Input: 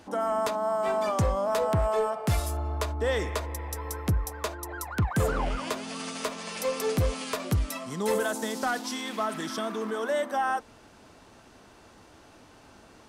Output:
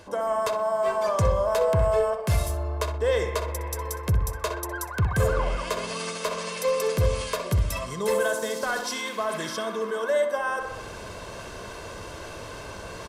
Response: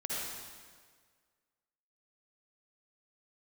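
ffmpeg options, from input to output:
-filter_complex "[0:a]aecho=1:1:1.9:0.61,asplit=2[a][b];[b]adelay=63,lowpass=f=2.8k:p=1,volume=-8dB,asplit=2[c][d];[d]adelay=63,lowpass=f=2.8k:p=1,volume=0.5,asplit=2[e][f];[f]adelay=63,lowpass=f=2.8k:p=1,volume=0.5,asplit=2[g][h];[h]adelay=63,lowpass=f=2.8k:p=1,volume=0.5,asplit=2[i][j];[j]adelay=63,lowpass=f=2.8k:p=1,volume=0.5,asplit=2[k][l];[l]adelay=63,lowpass=f=2.8k:p=1,volume=0.5[m];[a][c][e][g][i][k][m]amix=inputs=7:normalize=0,areverse,acompressor=mode=upward:threshold=-25dB:ratio=2.5,areverse"

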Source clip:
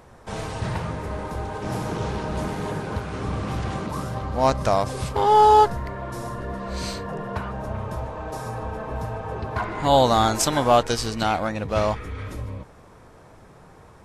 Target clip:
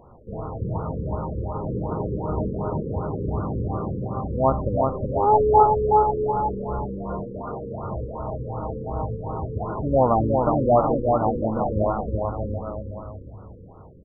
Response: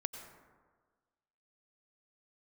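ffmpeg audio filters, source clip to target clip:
-filter_complex "[0:a]asettb=1/sr,asplit=3[a][b][c];[a]atrim=end=6.864[d];[b]atrim=start=6.86:end=7.84,asetpts=PTS-STARTPTS,afade=t=in:d=0.004:c=qsin,afade=t=out:st=0.976:d=0.004:c=qsin,highpass=170[e];[c]atrim=start=7.836[f];[d][e]acrossfade=d=0.004:c1=hsin:c2=qsin[g];[g][f]acrossfade=d=0.004:c1=qsin:c2=hsin,aecho=1:1:370|666|902.8|1092|1244:0.631|0.398|0.251|0.158|0.1,afftfilt=real='re*lt(b*sr/1024,520*pow(1500/520,0.5+0.5*sin(2*PI*2.7*pts/sr)))':imag='im*lt(b*sr/1024,520*pow(1500/520,0.5+0.5*sin(2*PI*2.7*pts/sr)))':win_size=1024:overlap=0.75"

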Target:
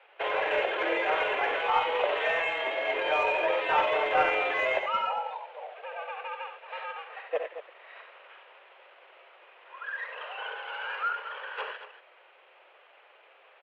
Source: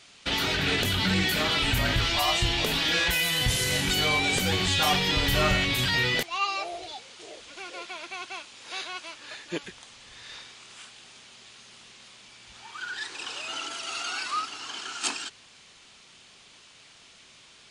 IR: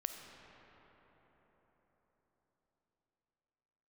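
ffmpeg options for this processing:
-filter_complex "[0:a]highpass=f=350:t=q:w=0.5412,highpass=f=350:t=q:w=1.307,lowpass=f=2.6k:t=q:w=0.5176,lowpass=f=2.6k:t=q:w=0.7071,lowpass=f=2.6k:t=q:w=1.932,afreqshift=150,asplit=2[a][b];[b]asoftclip=type=tanh:threshold=-23.5dB,volume=-6.5dB[c];[a][c]amix=inputs=2:normalize=0,tiltshelf=f=940:g=8,aecho=1:1:79|103|106|296:0.335|0.335|0.1|0.251,atempo=1.3"

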